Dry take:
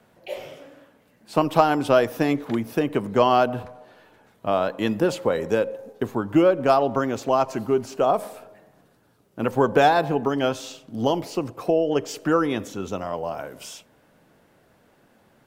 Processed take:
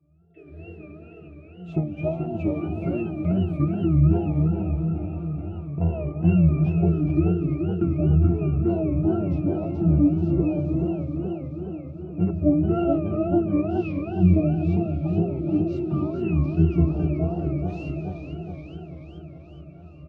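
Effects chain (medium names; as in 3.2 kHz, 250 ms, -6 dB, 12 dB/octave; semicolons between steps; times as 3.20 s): peaking EQ 1.9 kHz -6.5 dB 0.92 oct; compression 6:1, threshold -29 dBFS, peak gain reduction 16.5 dB; bass shelf 260 Hz +9 dB; hum notches 60/120/180/240/300/360/420 Hz; pitch-class resonator G#, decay 0.27 s; delay 599 ms -14.5 dB; gated-style reverb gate 280 ms rising, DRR 8 dB; level rider gain up to 16.5 dB; tape speed -23%; wow and flutter 130 cents; modulated delay 427 ms, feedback 65%, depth 139 cents, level -7 dB; trim +3.5 dB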